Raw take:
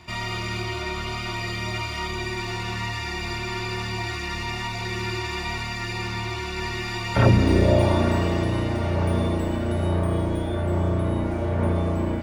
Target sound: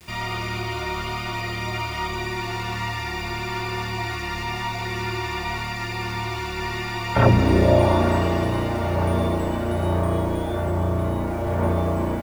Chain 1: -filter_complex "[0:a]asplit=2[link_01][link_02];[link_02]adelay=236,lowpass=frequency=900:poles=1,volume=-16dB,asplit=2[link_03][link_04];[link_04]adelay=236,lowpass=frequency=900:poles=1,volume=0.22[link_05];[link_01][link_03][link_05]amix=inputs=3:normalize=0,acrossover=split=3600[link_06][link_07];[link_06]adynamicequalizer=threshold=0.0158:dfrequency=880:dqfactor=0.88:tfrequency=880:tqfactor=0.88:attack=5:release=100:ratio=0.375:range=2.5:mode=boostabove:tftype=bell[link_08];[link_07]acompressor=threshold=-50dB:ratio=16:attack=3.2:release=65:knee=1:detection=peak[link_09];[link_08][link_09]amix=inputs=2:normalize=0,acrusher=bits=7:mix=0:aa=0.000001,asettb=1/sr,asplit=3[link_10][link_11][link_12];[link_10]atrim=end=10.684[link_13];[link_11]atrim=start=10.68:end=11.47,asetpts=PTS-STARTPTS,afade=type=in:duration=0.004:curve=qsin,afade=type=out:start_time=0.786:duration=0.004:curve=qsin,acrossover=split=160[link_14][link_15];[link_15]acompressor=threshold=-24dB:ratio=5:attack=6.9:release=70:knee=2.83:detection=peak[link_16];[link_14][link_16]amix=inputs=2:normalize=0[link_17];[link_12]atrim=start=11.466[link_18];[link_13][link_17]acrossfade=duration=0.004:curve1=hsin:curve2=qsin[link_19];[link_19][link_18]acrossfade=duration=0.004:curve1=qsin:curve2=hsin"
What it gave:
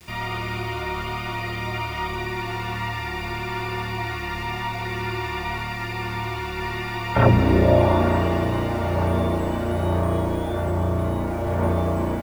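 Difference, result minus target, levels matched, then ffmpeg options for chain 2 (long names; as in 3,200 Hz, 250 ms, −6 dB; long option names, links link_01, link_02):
downward compressor: peak gain reduction +9 dB
-filter_complex "[0:a]asplit=2[link_01][link_02];[link_02]adelay=236,lowpass=frequency=900:poles=1,volume=-16dB,asplit=2[link_03][link_04];[link_04]adelay=236,lowpass=frequency=900:poles=1,volume=0.22[link_05];[link_01][link_03][link_05]amix=inputs=3:normalize=0,acrossover=split=3600[link_06][link_07];[link_06]adynamicequalizer=threshold=0.0158:dfrequency=880:dqfactor=0.88:tfrequency=880:tqfactor=0.88:attack=5:release=100:ratio=0.375:range=2.5:mode=boostabove:tftype=bell[link_08];[link_07]acompressor=threshold=-40.5dB:ratio=16:attack=3.2:release=65:knee=1:detection=peak[link_09];[link_08][link_09]amix=inputs=2:normalize=0,acrusher=bits=7:mix=0:aa=0.000001,asettb=1/sr,asplit=3[link_10][link_11][link_12];[link_10]atrim=end=10.684[link_13];[link_11]atrim=start=10.68:end=11.47,asetpts=PTS-STARTPTS,afade=type=in:duration=0.004:curve=qsin,afade=type=out:start_time=0.786:duration=0.004:curve=qsin,acrossover=split=160[link_14][link_15];[link_15]acompressor=threshold=-24dB:ratio=5:attack=6.9:release=70:knee=2.83:detection=peak[link_16];[link_14][link_16]amix=inputs=2:normalize=0[link_17];[link_12]atrim=start=11.466[link_18];[link_13][link_17]acrossfade=duration=0.004:curve1=hsin:curve2=qsin[link_19];[link_19][link_18]acrossfade=duration=0.004:curve1=qsin:curve2=hsin"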